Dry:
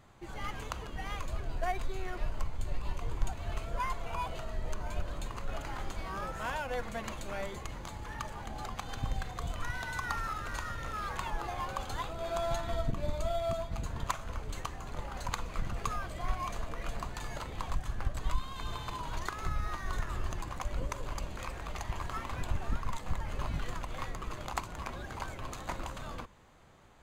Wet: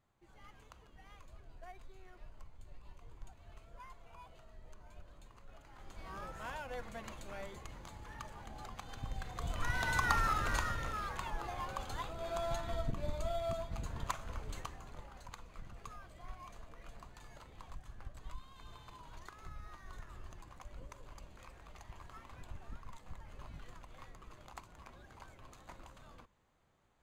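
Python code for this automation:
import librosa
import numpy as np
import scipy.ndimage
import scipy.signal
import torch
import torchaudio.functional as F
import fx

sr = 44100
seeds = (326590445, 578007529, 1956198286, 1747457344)

y = fx.gain(x, sr, db=fx.line((5.7, -19.0), (6.1, -8.0), (9.09, -8.0), (9.88, 4.0), (10.53, 4.0), (11.14, -4.5), (14.53, -4.5), (15.28, -15.0)))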